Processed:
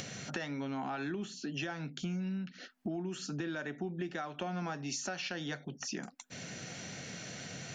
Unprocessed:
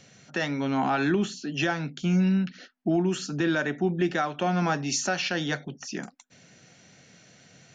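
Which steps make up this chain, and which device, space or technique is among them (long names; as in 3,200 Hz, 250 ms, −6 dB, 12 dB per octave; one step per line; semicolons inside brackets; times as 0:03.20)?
upward and downward compression (upward compression, threshold −37 dBFS; downward compressor 5 to 1, threshold −39 dBFS, peak gain reduction 17 dB)
level +2 dB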